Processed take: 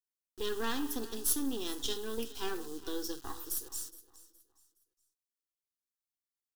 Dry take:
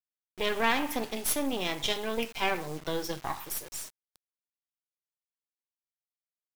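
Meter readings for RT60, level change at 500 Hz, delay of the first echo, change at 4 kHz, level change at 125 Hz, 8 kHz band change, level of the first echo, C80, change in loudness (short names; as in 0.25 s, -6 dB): none, -6.0 dB, 0.417 s, -6.5 dB, -11.0 dB, -0.5 dB, -18.5 dB, none, -5.0 dB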